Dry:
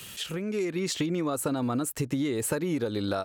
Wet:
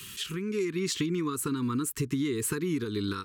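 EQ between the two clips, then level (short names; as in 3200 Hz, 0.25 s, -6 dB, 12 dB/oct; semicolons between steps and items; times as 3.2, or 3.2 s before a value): elliptic band-stop 430–1000 Hz, stop band 40 dB; 0.0 dB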